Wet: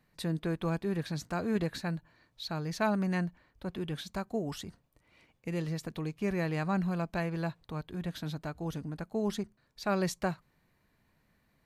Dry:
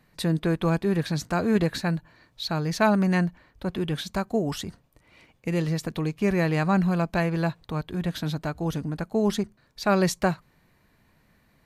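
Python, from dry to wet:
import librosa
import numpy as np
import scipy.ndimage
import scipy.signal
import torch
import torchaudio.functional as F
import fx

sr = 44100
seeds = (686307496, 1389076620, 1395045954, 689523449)

y = x * librosa.db_to_amplitude(-8.5)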